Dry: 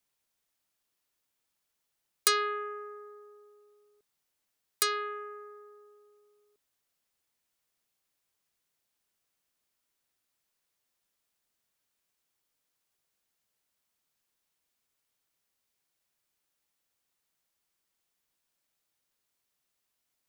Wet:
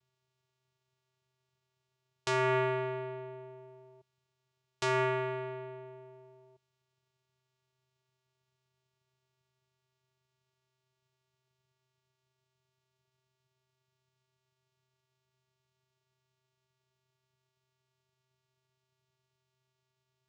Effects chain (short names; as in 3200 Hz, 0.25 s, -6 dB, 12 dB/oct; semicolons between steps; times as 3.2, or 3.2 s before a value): vocoder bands 4, square 129 Hz; limiter -26.5 dBFS, peak gain reduction 11 dB; gain +6 dB